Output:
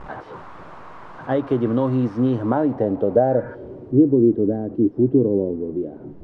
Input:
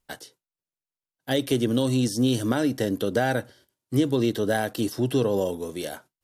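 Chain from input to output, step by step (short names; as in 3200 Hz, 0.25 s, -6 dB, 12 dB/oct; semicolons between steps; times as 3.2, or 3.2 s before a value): delta modulation 64 kbps, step -31 dBFS; low-pass sweep 1100 Hz -> 340 Hz, 2.25–4.19; spectral repair 3.32–3.52, 920–2500 Hz before; gain +2.5 dB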